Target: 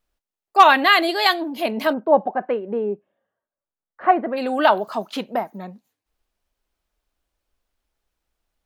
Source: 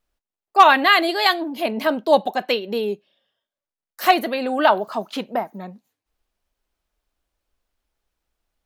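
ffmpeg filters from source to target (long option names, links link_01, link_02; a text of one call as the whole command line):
ffmpeg -i in.wav -filter_complex "[0:a]asplit=3[link_01][link_02][link_03];[link_01]afade=type=out:start_time=1.92:duration=0.02[link_04];[link_02]lowpass=frequency=1600:width=0.5412,lowpass=frequency=1600:width=1.3066,afade=type=in:start_time=1.92:duration=0.02,afade=type=out:start_time=4.36:duration=0.02[link_05];[link_03]afade=type=in:start_time=4.36:duration=0.02[link_06];[link_04][link_05][link_06]amix=inputs=3:normalize=0" out.wav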